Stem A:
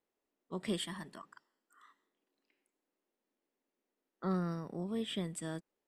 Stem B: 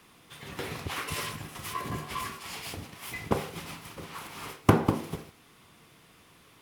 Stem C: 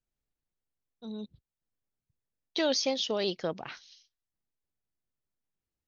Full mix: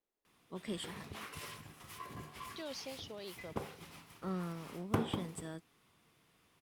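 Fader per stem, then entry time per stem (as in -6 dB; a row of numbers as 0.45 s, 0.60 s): -5.0 dB, -13.0 dB, -17.0 dB; 0.00 s, 0.25 s, 0.00 s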